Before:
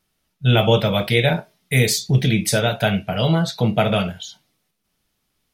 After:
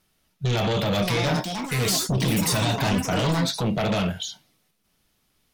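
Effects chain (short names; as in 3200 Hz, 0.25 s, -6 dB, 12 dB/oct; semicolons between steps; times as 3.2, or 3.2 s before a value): 2.38–3.05 comb 1.1 ms, depth 75%; limiter -13.5 dBFS, peak gain reduction 10.5 dB; sine folder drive 5 dB, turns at -13.5 dBFS; echoes that change speed 0.721 s, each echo +7 st, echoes 2, each echo -6 dB; gain -6 dB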